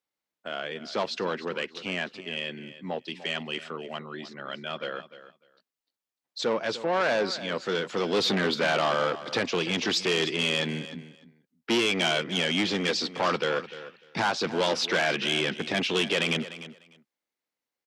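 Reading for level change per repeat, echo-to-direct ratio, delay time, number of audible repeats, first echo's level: -16.0 dB, -14.5 dB, 299 ms, 2, -14.5 dB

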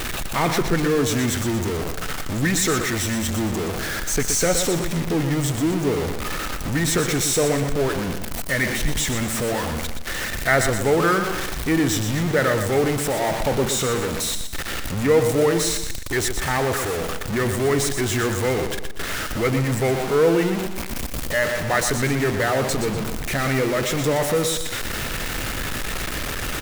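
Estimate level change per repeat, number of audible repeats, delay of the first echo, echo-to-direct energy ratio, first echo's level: -7.5 dB, 3, 121 ms, -7.0 dB, -8.0 dB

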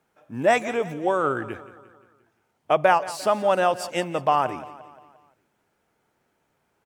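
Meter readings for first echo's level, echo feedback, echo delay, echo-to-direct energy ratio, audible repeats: -16.5 dB, 52%, 175 ms, -15.0 dB, 4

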